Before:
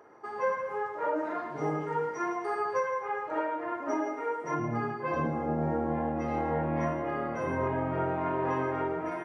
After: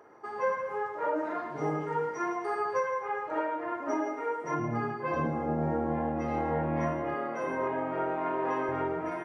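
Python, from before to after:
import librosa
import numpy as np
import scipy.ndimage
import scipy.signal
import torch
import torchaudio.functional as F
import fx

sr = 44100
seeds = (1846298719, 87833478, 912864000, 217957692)

y = fx.highpass(x, sr, hz=260.0, slope=12, at=(7.14, 8.69))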